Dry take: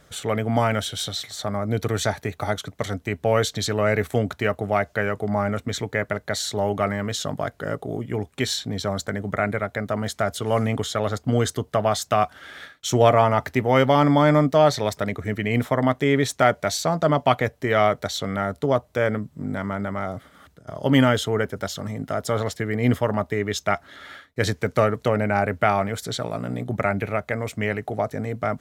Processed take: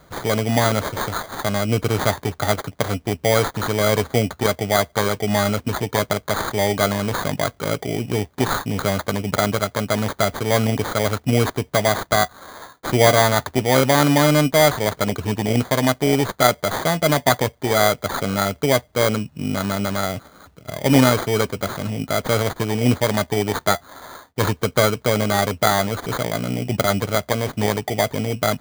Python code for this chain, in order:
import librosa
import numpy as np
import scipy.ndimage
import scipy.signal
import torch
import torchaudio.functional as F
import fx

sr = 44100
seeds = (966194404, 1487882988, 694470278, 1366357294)

p1 = fx.rider(x, sr, range_db=3, speed_s=0.5)
p2 = x + (p1 * 10.0 ** (1.0 / 20.0))
p3 = fx.sample_hold(p2, sr, seeds[0], rate_hz=2700.0, jitter_pct=0)
y = p3 * 10.0 ** (-3.5 / 20.0)